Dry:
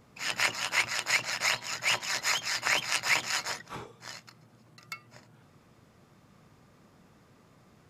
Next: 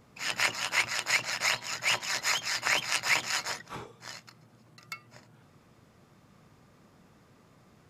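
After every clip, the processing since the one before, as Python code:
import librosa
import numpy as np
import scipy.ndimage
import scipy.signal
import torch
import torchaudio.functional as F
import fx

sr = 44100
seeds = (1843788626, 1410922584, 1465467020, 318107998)

y = x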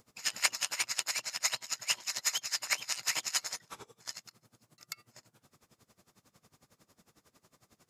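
y = fx.rider(x, sr, range_db=10, speed_s=2.0)
y = fx.bass_treble(y, sr, bass_db=-4, treble_db=12)
y = y * 10.0 ** (-21 * (0.5 - 0.5 * np.cos(2.0 * np.pi * 11.0 * np.arange(len(y)) / sr)) / 20.0)
y = y * librosa.db_to_amplitude(-4.5)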